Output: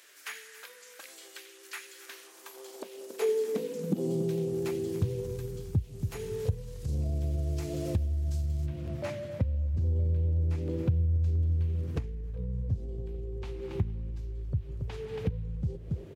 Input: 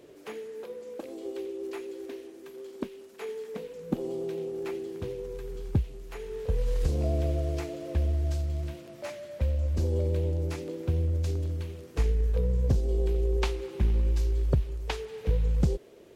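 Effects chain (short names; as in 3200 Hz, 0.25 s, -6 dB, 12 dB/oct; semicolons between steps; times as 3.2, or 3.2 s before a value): echo 0.278 s -18.5 dB; limiter -23.5 dBFS, peak gain reduction 9.5 dB; tone controls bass +11 dB, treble +10 dB, from 8.65 s treble -5 dB; compressor 6:1, threshold -31 dBFS, peak gain reduction 14.5 dB; high-pass sweep 1600 Hz -> 100 Hz, 1.97–4.58; gain +2 dB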